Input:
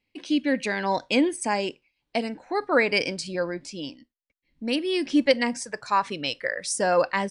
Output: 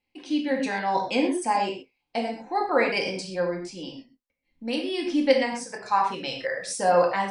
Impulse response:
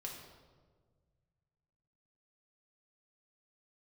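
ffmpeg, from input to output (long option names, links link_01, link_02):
-filter_complex "[0:a]equalizer=frequency=820:width_type=o:width=0.47:gain=8.5[link_01];[1:a]atrim=start_sample=2205,atrim=end_sample=6174[link_02];[link_01][link_02]afir=irnorm=-1:irlink=0"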